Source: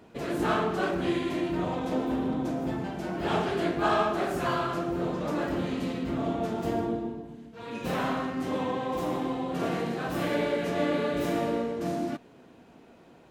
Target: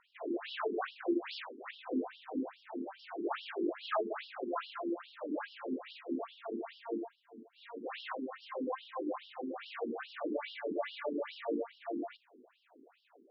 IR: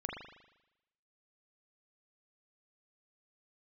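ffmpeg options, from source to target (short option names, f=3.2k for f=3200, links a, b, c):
-filter_complex "[0:a]asettb=1/sr,asplit=3[a][b][c];[a]atrim=end=1.224[d];[b]atrim=start=1.22:end=1.71,asetpts=PTS-STARTPTS,afade=t=in:d=0.004:c=qsin,afade=t=out:st=0.486:d=0.004:c=qsin,aeval=exprs='(mod(33.5*val(0)+1,2)-1)/33.5':c=same[e];[c]atrim=start=1.706[f];[d][e]acrossfade=d=0.004:c1=hsin:c2=qsin[g];[g][f]acrossfade=d=0.004:c1=qsin:c2=hsin,afftfilt=real='re*between(b*sr/1024,300*pow(4000/300,0.5+0.5*sin(2*PI*2.4*pts/sr))/1.41,300*pow(4000/300,0.5+0.5*sin(2*PI*2.4*pts/sr))*1.41)':imag='im*between(b*sr/1024,300*pow(4000/300,0.5+0.5*sin(2*PI*2.4*pts/sr))/1.41,300*pow(4000/300,0.5+0.5*sin(2*PI*2.4*pts/sr))*1.41)':win_size=1024:overlap=0.75,volume=-2.5dB"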